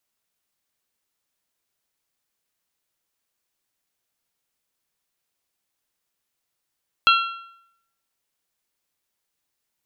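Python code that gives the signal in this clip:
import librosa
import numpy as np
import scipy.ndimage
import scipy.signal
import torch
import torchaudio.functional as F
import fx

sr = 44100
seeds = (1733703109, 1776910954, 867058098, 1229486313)

y = fx.strike_metal(sr, length_s=1.55, level_db=-12.0, body='bell', hz=1360.0, decay_s=0.75, tilt_db=3, modes=4)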